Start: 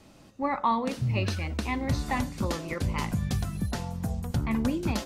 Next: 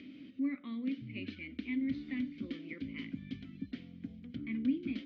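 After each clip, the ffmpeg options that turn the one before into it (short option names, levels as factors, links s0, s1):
-filter_complex "[0:a]lowpass=f=4600:w=0.5412,lowpass=f=4600:w=1.3066,acompressor=mode=upward:threshold=0.0316:ratio=2.5,asplit=3[s0][s1][s2];[s0]bandpass=f=270:t=q:w=8,volume=1[s3];[s1]bandpass=f=2290:t=q:w=8,volume=0.501[s4];[s2]bandpass=f=3010:t=q:w=8,volume=0.355[s5];[s3][s4][s5]amix=inputs=3:normalize=0,volume=1.12"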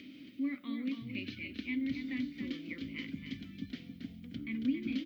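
-af "aemphasis=mode=production:type=75fm,aecho=1:1:275:0.447"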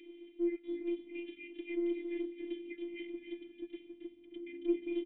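-filter_complex "[0:a]aresample=8000,aresample=44100,asplit=3[s0][s1][s2];[s0]bandpass=f=270:t=q:w=8,volume=1[s3];[s1]bandpass=f=2290:t=q:w=8,volume=0.501[s4];[s2]bandpass=f=3010:t=q:w=8,volume=0.355[s5];[s3][s4][s5]amix=inputs=3:normalize=0,afftfilt=real='hypot(re,im)*cos(PI*b)':imag='0':win_size=512:overlap=0.75,volume=2"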